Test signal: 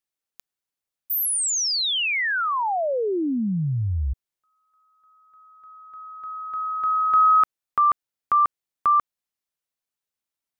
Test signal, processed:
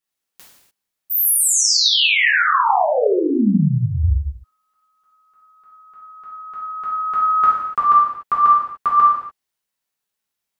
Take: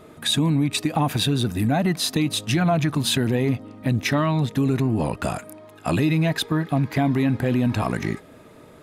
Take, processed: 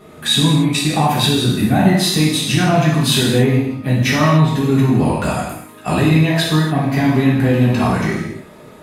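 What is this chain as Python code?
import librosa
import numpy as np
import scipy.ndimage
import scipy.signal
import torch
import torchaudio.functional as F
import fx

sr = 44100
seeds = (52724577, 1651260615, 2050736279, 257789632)

y = fx.rev_gated(x, sr, seeds[0], gate_ms=320, shape='falling', drr_db=-7.0)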